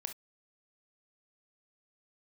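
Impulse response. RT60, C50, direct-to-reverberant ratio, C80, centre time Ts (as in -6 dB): not exponential, 10.5 dB, 6.5 dB, 60.0 dB, 9 ms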